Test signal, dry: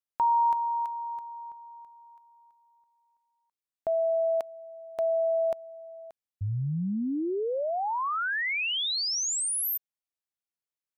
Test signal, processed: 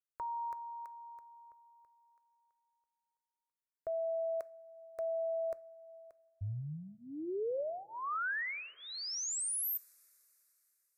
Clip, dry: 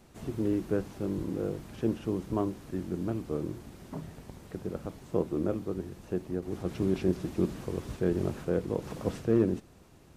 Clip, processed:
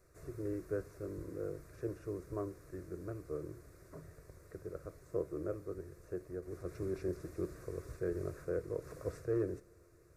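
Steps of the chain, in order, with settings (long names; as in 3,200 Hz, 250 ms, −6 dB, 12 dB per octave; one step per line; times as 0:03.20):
phaser with its sweep stopped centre 840 Hz, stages 6
coupled-rooms reverb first 0.34 s, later 4 s, from −19 dB, DRR 17 dB
level −6 dB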